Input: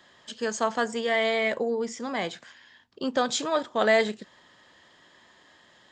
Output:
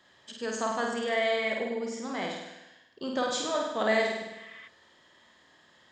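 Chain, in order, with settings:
flutter between parallel walls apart 8.7 metres, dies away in 0.96 s
healed spectral selection 0:04.34–0:04.65, 1,000–3,700 Hz before
level −6 dB

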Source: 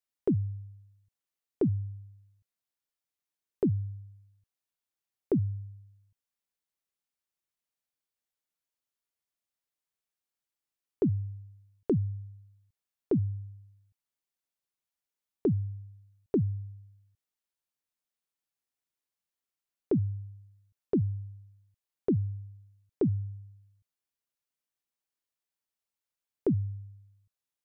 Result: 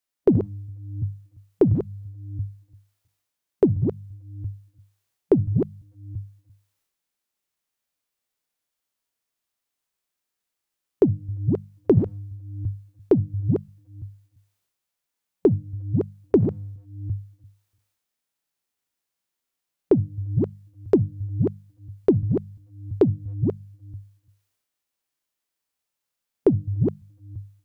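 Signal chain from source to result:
delay that plays each chunk backwards 342 ms, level −2 dB
transient designer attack +10 dB, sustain +6 dB
harmonic and percussive parts rebalanced percussive −6 dB
mains-hum notches 50/100/150/200 Hz
level +7.5 dB

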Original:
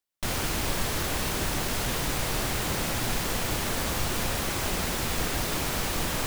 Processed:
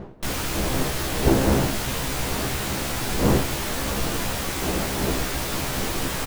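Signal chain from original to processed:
wind on the microphone 390 Hz −29 dBFS
double-tracking delay 15 ms −3.5 dB

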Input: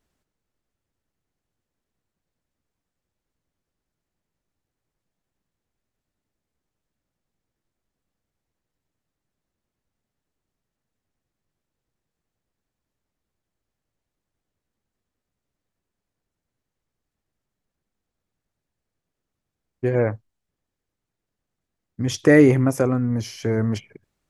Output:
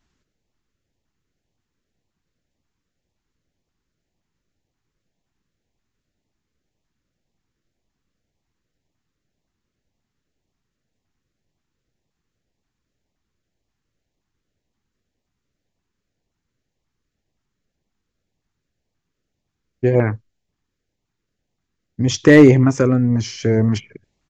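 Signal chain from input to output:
downsampling to 16,000 Hz
auto-filter notch saw up 1.9 Hz 460–1,600 Hz
gain into a clipping stage and back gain 7.5 dB
level +6 dB

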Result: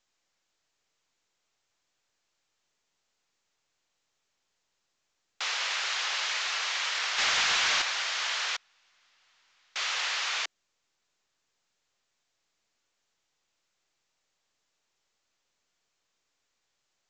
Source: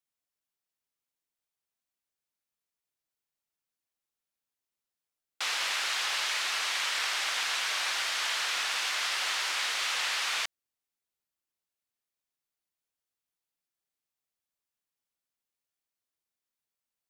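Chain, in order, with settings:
Butterworth high-pass 350 Hz 36 dB per octave
0:07.18–0:07.82: leveller curve on the samples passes 2
0:08.56–0:09.76: gate with flip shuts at −26 dBFS, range −37 dB
mu-law 128 kbit/s 16,000 Hz

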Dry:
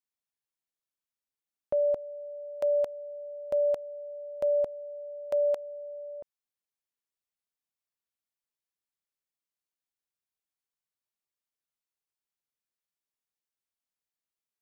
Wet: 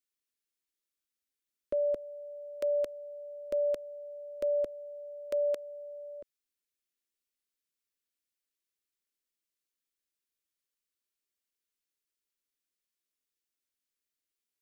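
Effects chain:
phaser with its sweep stopped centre 330 Hz, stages 4
level +3 dB

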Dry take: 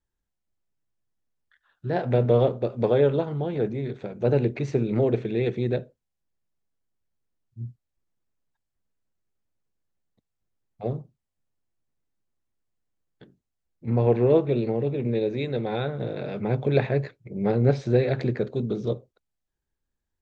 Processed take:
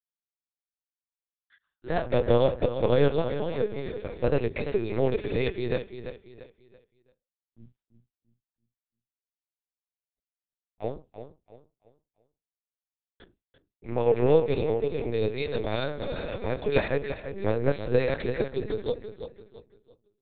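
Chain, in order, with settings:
noise gate with hold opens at −49 dBFS
high-pass filter 310 Hz 12 dB per octave
high-shelf EQ 2,800 Hz +9 dB
repeating echo 337 ms, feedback 34%, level −10 dB
linear-prediction vocoder at 8 kHz pitch kept

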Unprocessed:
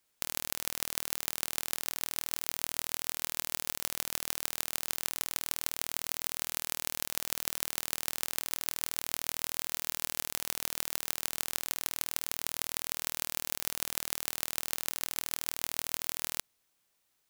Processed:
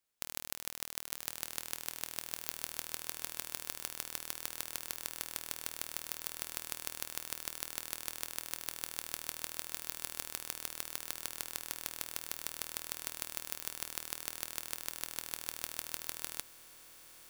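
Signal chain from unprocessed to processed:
on a send: feedback delay with all-pass diffusion 1,171 ms, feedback 48%, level −11.5 dB
on the sum: expander for the loud parts 1.5 to 1, over −41 dBFS
level −4.5 dB

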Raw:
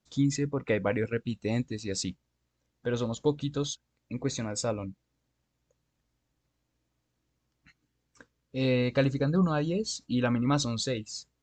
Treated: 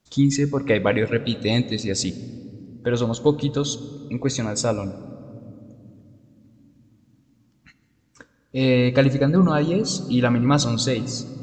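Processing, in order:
0:00.75–0:01.80: parametric band 3,700 Hz +14 dB 0.6 octaves
on a send: convolution reverb, pre-delay 3 ms, DRR 14.5 dB
on the sum: level +8 dB

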